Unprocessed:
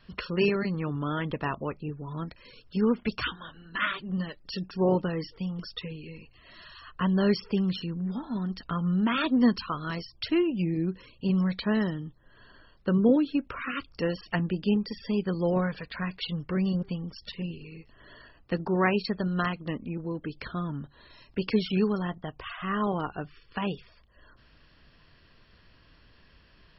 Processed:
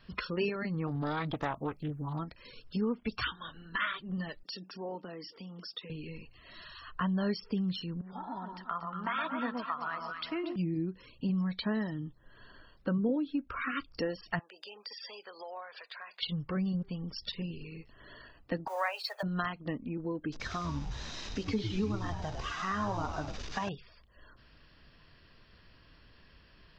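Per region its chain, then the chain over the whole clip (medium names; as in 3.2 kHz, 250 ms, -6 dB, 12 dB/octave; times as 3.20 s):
0.87–2.19 s: treble shelf 4.5 kHz +11.5 dB + loudspeaker Doppler distortion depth 0.53 ms
4.43–5.90 s: high-pass 200 Hz 24 dB/octave + compression 2.5:1, threshold -45 dBFS
8.01–10.56 s: three-band isolator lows -16 dB, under 570 Hz, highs -15 dB, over 2.8 kHz + echo whose repeats swap between lows and highs 117 ms, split 1.1 kHz, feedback 63%, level -2.5 dB
14.39–16.23 s: high-pass 580 Hz 24 dB/octave + compression 4:1, threshold -44 dBFS
18.67–19.23 s: companding laws mixed up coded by mu + steep high-pass 530 Hz 48 dB/octave
20.32–23.69 s: one-bit delta coder 32 kbps, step -38 dBFS + hum notches 60/120/180/240/300/360/420/480/540 Hz + frequency-shifting echo 100 ms, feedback 53%, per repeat -100 Hz, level -7 dB
whole clip: spectral noise reduction 7 dB; compression 2.5:1, threshold -41 dBFS; trim +6 dB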